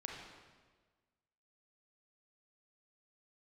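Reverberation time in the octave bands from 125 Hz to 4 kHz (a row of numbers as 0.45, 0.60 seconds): 1.6, 1.5, 1.5, 1.4, 1.3, 1.2 seconds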